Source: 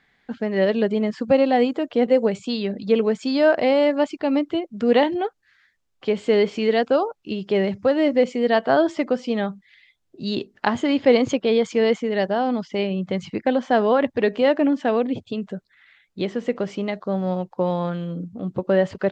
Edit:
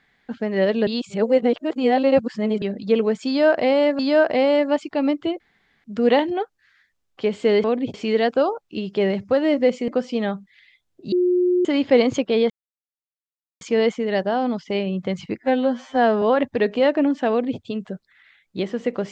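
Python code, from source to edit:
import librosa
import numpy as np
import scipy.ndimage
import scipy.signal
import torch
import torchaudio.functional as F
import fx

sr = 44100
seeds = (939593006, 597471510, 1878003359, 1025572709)

y = fx.edit(x, sr, fx.reverse_span(start_s=0.87, length_s=1.75),
    fx.repeat(start_s=3.27, length_s=0.72, count=2),
    fx.insert_room_tone(at_s=4.68, length_s=0.44),
    fx.cut(start_s=8.42, length_s=0.61),
    fx.bleep(start_s=10.27, length_s=0.53, hz=359.0, db=-15.0),
    fx.insert_silence(at_s=11.65, length_s=1.11),
    fx.stretch_span(start_s=13.42, length_s=0.42, factor=2.0),
    fx.duplicate(start_s=14.92, length_s=0.3, to_s=6.48), tone=tone)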